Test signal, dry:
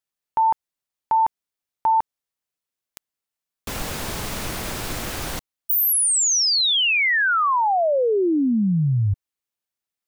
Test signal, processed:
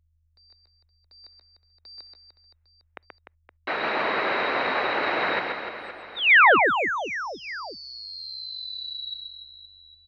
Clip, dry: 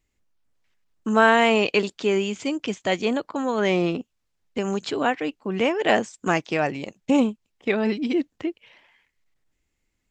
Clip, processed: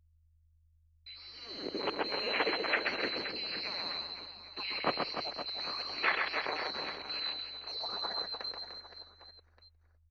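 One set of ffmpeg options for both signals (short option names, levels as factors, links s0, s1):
-filter_complex "[0:a]afftfilt=real='real(if(lt(b,736),b+184*(1-2*mod(floor(b/184),2)),b),0)':imag='imag(if(lt(b,736),b+184*(1-2*mod(floor(b/184),2)),b),0)':win_size=2048:overlap=0.75,agate=range=0.00224:threshold=0.00316:ratio=3:release=79:detection=rms,tiltshelf=f=850:g=7.5,areverse,acompressor=threshold=0.0158:ratio=10:attack=23:release=180:knee=6:detection=peak,areverse,alimiter=level_in=1.78:limit=0.0631:level=0:latency=1:release=29,volume=0.562,dynaudnorm=f=590:g=5:m=5.31,asplit=2[s0][s1];[s1]aecho=0:1:130|299|518.7|804.3|1176:0.631|0.398|0.251|0.158|0.1[s2];[s0][s2]amix=inputs=2:normalize=0,crystalizer=i=5:c=0,aeval=exprs='val(0)+0.0447*(sin(2*PI*50*n/s)+sin(2*PI*2*50*n/s)/2+sin(2*PI*3*50*n/s)/3+sin(2*PI*4*50*n/s)/4+sin(2*PI*5*50*n/s)/5)':c=same,highpass=f=560:t=q:w=0.5412,highpass=f=560:t=q:w=1.307,lowpass=f=2400:t=q:w=0.5176,lowpass=f=2400:t=q:w=0.7071,lowpass=f=2400:t=q:w=1.932,afreqshift=-170,volume=1.58"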